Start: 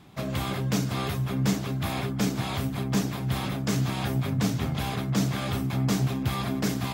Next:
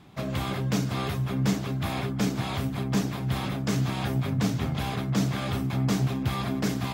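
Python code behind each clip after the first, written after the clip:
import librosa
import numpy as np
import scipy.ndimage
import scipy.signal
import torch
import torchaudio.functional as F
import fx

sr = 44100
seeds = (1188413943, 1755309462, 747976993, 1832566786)

y = fx.high_shelf(x, sr, hz=6700.0, db=-5.0)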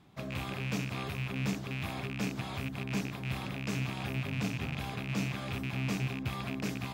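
y = fx.rattle_buzz(x, sr, strikes_db=-28.0, level_db=-20.0)
y = y * 10.0 ** (-8.5 / 20.0)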